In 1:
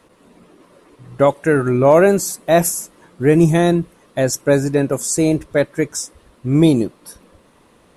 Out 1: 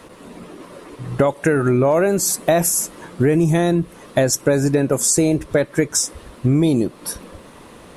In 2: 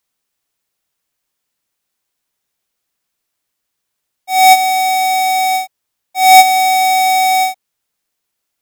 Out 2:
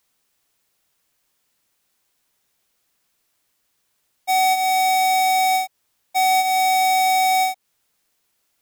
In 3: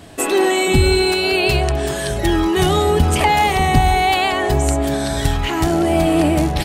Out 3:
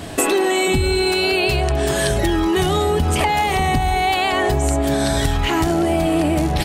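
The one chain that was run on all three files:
in parallel at +2 dB: brickwall limiter −11 dBFS
on the sum: downward compressor 6 to 1, threshold −17 dBFS
loudness normalisation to −18 LKFS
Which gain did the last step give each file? +3.5, −2.0, +2.0 decibels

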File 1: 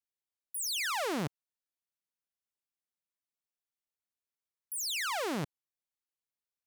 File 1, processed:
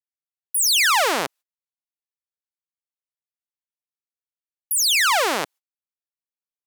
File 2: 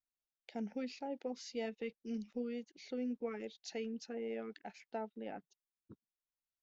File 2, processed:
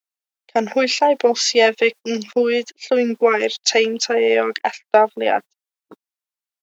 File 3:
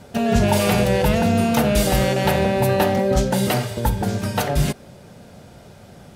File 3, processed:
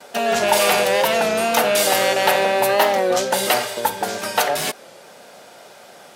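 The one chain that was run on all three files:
in parallel at −11.5 dB: sine wavefolder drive 4 dB, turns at −6.5 dBFS
on the sum: noise gate −48 dBFS, range −28 dB
high-pass filter 580 Hz 12 dB per octave
wow of a warped record 33 1/3 rpm, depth 100 cents
loudness normalisation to −18 LKFS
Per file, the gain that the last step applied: +12.0, +27.0, +2.0 decibels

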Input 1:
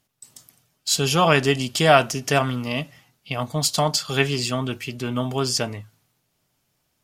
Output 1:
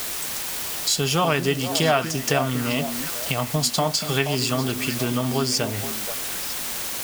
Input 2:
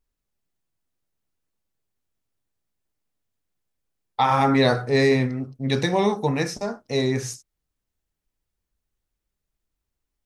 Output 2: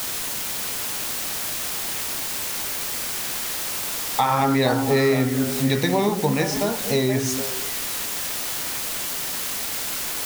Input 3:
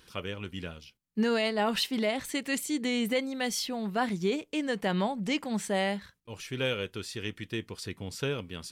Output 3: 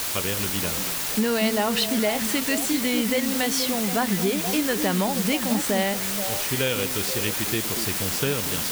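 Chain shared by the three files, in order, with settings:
bit-depth reduction 6 bits, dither triangular
downward compressor 2.5 to 1, threshold −30 dBFS
echo through a band-pass that steps 238 ms, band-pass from 240 Hz, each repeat 1.4 octaves, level −4 dB
loudness normalisation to −23 LKFS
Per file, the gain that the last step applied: +7.0, +8.5, +8.5 decibels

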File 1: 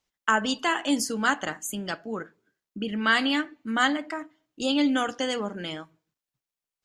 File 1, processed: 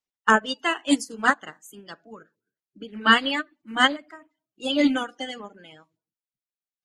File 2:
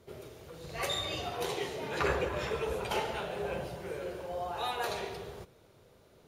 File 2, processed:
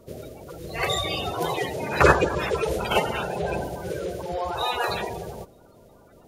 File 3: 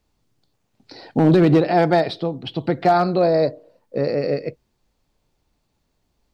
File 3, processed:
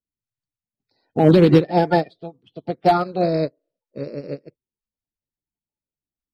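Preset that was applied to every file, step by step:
spectral magnitudes quantised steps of 30 dB
expander for the loud parts 2.5 to 1, over −33 dBFS
normalise the peak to −3 dBFS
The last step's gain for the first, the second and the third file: +7.5, +16.0, +4.0 decibels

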